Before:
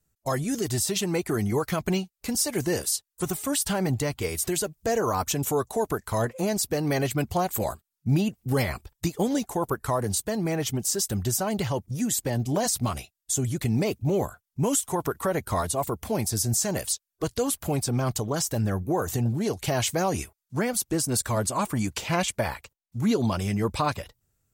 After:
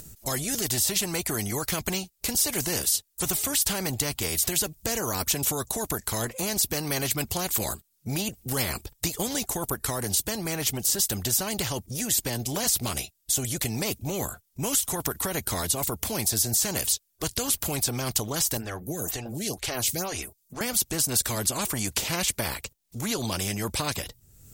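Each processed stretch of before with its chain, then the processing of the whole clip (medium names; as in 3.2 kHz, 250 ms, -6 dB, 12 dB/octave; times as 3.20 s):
18.57–20.61 s: band-stop 920 Hz, Q 11 + lamp-driven phase shifter 2.1 Hz
whole clip: peaking EQ 1.2 kHz -11 dB 2.7 oct; upward compressor, threshold -45 dBFS; spectrum-flattening compressor 2:1; trim +8.5 dB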